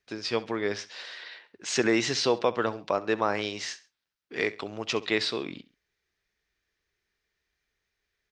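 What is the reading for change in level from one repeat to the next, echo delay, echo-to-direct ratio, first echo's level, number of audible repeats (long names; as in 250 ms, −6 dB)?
−8.0 dB, 67 ms, −18.0 dB, −18.5 dB, 2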